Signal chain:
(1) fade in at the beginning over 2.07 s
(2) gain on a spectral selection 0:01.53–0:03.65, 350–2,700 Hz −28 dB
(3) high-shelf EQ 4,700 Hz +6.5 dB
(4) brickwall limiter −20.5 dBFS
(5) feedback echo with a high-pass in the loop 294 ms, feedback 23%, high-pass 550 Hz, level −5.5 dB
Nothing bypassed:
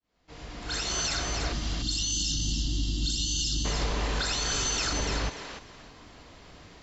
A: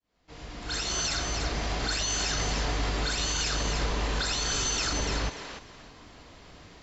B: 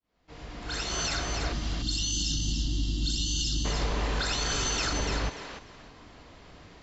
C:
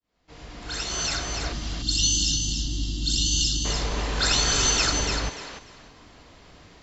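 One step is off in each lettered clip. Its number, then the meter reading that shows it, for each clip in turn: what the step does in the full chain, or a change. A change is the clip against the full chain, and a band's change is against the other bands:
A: 2, 1 kHz band +3.0 dB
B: 3, 4 kHz band −1.5 dB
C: 4, average gain reduction 2.0 dB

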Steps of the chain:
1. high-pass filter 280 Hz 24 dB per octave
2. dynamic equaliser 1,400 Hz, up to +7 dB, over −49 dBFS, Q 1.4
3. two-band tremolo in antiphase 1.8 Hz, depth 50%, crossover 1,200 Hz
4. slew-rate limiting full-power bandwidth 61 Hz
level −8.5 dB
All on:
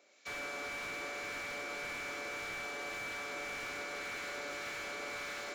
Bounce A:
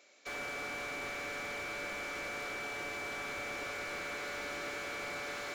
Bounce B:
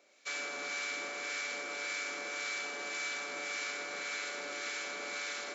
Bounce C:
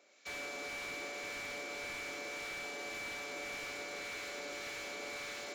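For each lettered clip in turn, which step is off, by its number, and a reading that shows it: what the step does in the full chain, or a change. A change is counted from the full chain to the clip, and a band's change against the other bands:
3, 125 Hz band +2.5 dB
4, distortion level −3 dB
2, 1 kHz band −3.0 dB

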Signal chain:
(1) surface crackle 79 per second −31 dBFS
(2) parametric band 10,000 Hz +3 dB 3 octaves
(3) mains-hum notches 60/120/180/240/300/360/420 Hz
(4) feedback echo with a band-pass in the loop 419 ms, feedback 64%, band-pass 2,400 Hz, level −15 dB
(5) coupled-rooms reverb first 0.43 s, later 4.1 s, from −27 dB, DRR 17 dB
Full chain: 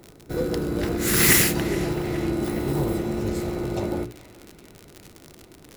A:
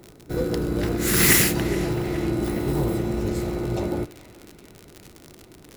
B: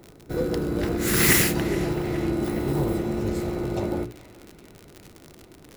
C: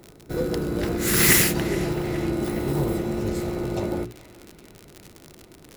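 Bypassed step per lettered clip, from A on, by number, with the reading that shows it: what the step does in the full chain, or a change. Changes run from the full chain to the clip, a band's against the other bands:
3, 125 Hz band +1.5 dB
2, change in momentary loudness spread −2 LU
5, echo-to-direct ratio −13.0 dB to −15.0 dB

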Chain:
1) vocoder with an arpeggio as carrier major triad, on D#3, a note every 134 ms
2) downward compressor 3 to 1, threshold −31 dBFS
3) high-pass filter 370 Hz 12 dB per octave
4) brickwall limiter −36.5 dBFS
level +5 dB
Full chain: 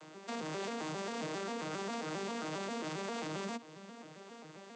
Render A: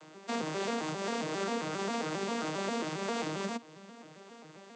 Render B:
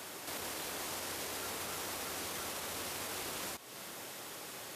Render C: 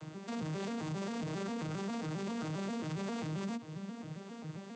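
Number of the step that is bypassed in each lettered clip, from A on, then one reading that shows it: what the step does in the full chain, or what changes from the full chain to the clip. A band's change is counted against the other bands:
4, average gain reduction 3.0 dB
1, 8 kHz band +13.0 dB
3, change in crest factor −2.0 dB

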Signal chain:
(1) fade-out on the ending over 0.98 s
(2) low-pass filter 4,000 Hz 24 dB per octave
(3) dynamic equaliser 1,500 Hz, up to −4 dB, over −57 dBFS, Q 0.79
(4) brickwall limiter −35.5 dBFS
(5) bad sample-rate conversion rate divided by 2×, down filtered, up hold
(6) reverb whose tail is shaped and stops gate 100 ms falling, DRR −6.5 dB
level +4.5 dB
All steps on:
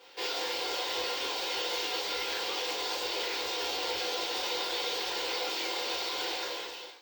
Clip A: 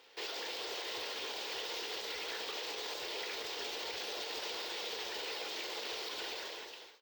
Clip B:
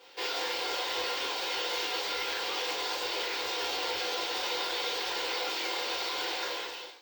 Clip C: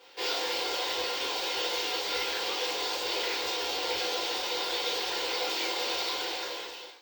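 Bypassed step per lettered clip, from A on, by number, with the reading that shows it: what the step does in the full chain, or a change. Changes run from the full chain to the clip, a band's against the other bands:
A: 6, change in crest factor −3.0 dB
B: 3, 2 kHz band +2.0 dB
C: 4, average gain reduction 1.5 dB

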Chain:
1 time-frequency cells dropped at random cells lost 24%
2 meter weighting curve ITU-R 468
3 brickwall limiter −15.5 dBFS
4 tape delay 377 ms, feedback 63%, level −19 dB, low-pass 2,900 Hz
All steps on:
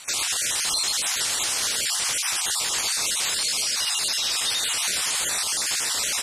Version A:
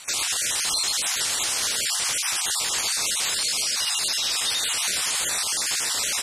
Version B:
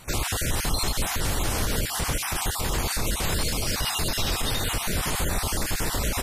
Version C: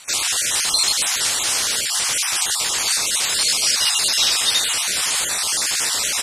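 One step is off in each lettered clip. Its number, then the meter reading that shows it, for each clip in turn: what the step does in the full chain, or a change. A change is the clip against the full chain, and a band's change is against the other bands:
4, echo-to-direct ratio −28.0 dB to none audible
2, 125 Hz band +21.5 dB
3, average gain reduction 4.5 dB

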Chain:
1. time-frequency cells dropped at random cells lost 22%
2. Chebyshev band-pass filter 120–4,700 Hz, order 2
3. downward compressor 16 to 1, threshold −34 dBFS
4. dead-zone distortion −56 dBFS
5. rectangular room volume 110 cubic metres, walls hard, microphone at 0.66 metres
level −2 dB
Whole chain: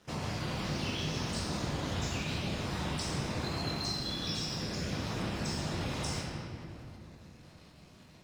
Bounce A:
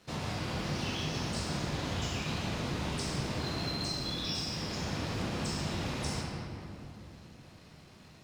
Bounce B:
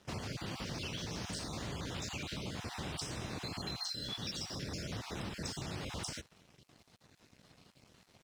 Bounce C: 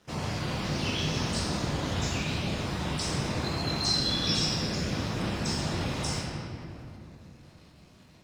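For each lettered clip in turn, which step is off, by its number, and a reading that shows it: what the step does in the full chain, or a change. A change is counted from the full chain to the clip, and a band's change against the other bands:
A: 1, change in momentary loudness spread +4 LU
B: 5, echo-to-direct ratio 5.0 dB to none audible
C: 3, average gain reduction 3.5 dB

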